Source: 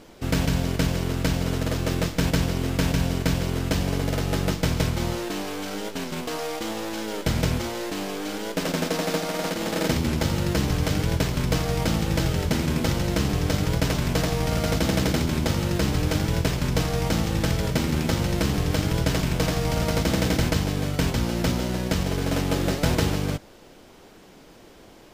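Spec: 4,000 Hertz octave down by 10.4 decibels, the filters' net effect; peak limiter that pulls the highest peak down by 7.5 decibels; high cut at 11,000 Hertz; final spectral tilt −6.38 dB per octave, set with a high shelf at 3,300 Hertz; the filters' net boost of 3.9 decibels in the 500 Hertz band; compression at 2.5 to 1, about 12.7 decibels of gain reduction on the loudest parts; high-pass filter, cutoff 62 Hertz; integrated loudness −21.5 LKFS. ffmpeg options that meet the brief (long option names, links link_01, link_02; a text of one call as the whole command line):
ffmpeg -i in.wav -af "highpass=62,lowpass=11000,equalizer=frequency=500:width_type=o:gain=5,highshelf=frequency=3300:gain=-7,equalizer=frequency=4000:width_type=o:gain=-9,acompressor=threshold=-38dB:ratio=2.5,volume=17dB,alimiter=limit=-11.5dB:level=0:latency=1" out.wav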